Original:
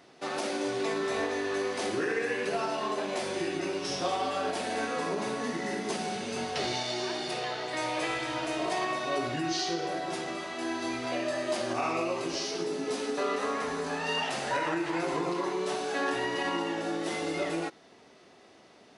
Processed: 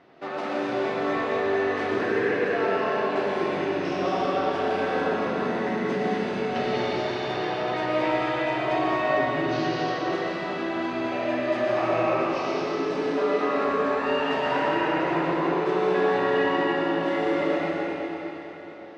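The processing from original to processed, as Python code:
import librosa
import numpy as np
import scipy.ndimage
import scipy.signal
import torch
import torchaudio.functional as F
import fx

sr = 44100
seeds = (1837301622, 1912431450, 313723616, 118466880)

y = scipy.signal.sosfilt(scipy.signal.butter(2, 2400.0, 'lowpass', fs=sr, output='sos'), x)
y = fx.rev_freeverb(y, sr, rt60_s=3.9, hf_ratio=0.95, predelay_ms=70, drr_db=-4.0)
y = y * librosa.db_to_amplitude(1.5)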